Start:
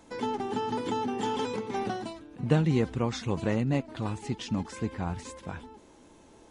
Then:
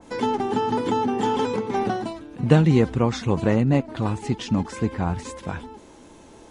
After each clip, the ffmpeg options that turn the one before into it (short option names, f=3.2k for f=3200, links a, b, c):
-af "adynamicequalizer=threshold=0.00447:dfrequency=1900:dqfactor=0.7:tfrequency=1900:tqfactor=0.7:attack=5:release=100:ratio=0.375:range=2.5:mode=cutabove:tftype=highshelf,volume=8dB"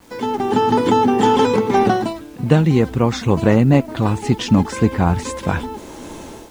-af "dynaudnorm=f=170:g=5:m=16.5dB,acrusher=bits=7:mix=0:aa=0.000001,volume=-1dB"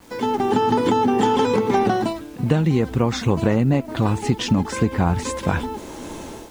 -af "acompressor=threshold=-14dB:ratio=6"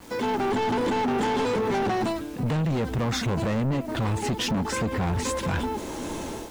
-filter_complex "[0:a]asplit=2[a][b];[b]alimiter=limit=-14.5dB:level=0:latency=1,volume=-2.5dB[c];[a][c]amix=inputs=2:normalize=0,asoftclip=type=tanh:threshold=-19dB,volume=-3dB"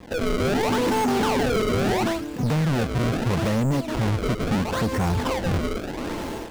-af "acrusher=samples=29:mix=1:aa=0.000001:lfo=1:lforange=46.4:lforate=0.75,volume=3dB" -ar 44100 -c:a adpcm_ima_wav